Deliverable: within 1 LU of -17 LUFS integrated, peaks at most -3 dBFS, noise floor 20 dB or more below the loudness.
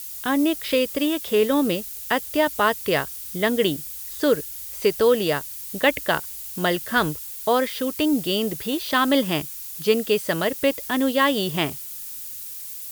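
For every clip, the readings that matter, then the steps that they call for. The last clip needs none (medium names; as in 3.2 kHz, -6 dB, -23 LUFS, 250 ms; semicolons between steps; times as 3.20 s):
noise floor -35 dBFS; noise floor target -43 dBFS; loudness -23.0 LUFS; peak level -5.5 dBFS; loudness target -17.0 LUFS
-> noise reduction 8 dB, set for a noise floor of -35 dBFS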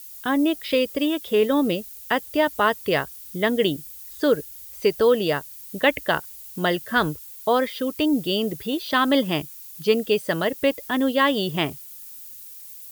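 noise floor -41 dBFS; noise floor target -43 dBFS
-> noise reduction 6 dB, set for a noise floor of -41 dBFS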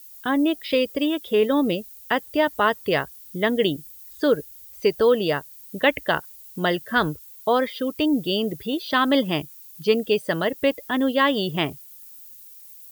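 noise floor -45 dBFS; loudness -23.0 LUFS; peak level -5.5 dBFS; loudness target -17.0 LUFS
-> trim +6 dB; peak limiter -3 dBFS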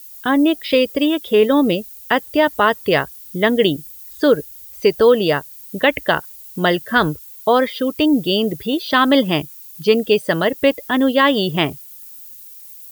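loudness -17.5 LUFS; peak level -3.0 dBFS; noise floor -39 dBFS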